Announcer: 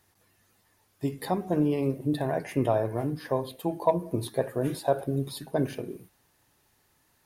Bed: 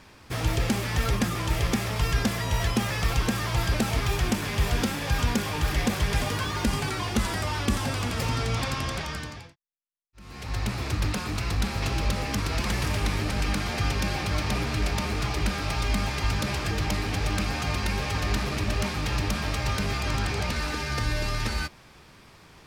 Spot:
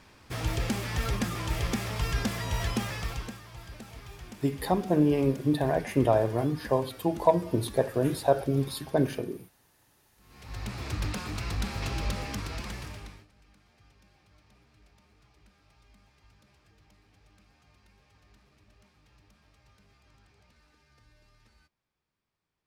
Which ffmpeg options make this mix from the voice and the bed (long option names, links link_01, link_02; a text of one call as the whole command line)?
ffmpeg -i stem1.wav -i stem2.wav -filter_complex "[0:a]adelay=3400,volume=2dB[link_01];[1:a]volume=10.5dB,afade=type=out:start_time=2.76:duration=0.66:silence=0.16788,afade=type=in:start_time=10.09:duration=0.86:silence=0.177828,afade=type=out:start_time=12.11:duration=1.16:silence=0.0316228[link_02];[link_01][link_02]amix=inputs=2:normalize=0" out.wav